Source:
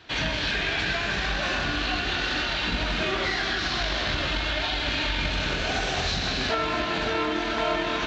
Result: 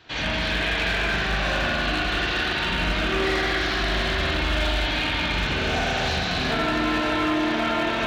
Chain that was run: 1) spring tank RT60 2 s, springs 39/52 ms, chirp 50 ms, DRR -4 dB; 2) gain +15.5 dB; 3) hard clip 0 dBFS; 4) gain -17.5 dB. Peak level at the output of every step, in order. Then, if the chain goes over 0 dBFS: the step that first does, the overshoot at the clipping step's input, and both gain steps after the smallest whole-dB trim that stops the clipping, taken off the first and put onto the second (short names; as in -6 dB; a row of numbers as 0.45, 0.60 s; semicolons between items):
-8.5, +7.0, 0.0, -17.5 dBFS; step 2, 7.0 dB; step 2 +8.5 dB, step 4 -10.5 dB